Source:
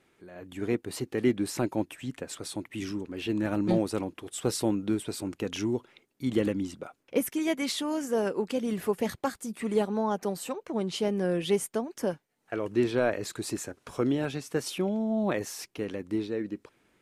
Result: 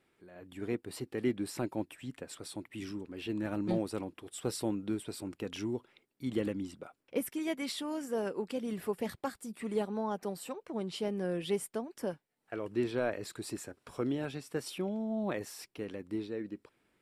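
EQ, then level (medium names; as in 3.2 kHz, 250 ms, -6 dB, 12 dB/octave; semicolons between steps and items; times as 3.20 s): band-stop 6.4 kHz, Q 7; -6.5 dB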